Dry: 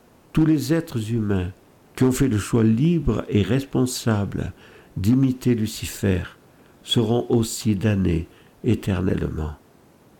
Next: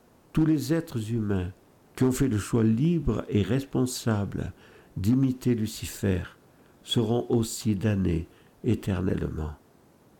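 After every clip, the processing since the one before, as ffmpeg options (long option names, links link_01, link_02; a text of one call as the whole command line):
ffmpeg -i in.wav -af "equalizer=frequency=2600:width=1.5:gain=-2.5,volume=-5dB" out.wav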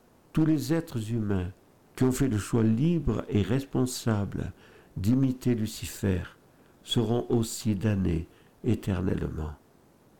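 ffmpeg -i in.wav -af "aeval=exprs='if(lt(val(0),0),0.708*val(0),val(0))':channel_layout=same" out.wav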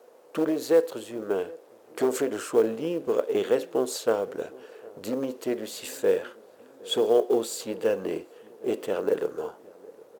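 ffmpeg -i in.wav -filter_complex "[0:a]highpass=frequency=490:width_type=q:width=4.9,acrusher=bits=8:mode=log:mix=0:aa=0.000001,asplit=2[link_01][link_02];[link_02]adelay=763,lowpass=frequency=1100:poles=1,volume=-22dB,asplit=2[link_03][link_04];[link_04]adelay=763,lowpass=frequency=1100:poles=1,volume=0.54,asplit=2[link_05][link_06];[link_06]adelay=763,lowpass=frequency=1100:poles=1,volume=0.54,asplit=2[link_07][link_08];[link_08]adelay=763,lowpass=frequency=1100:poles=1,volume=0.54[link_09];[link_01][link_03][link_05][link_07][link_09]amix=inputs=5:normalize=0,volume=1dB" out.wav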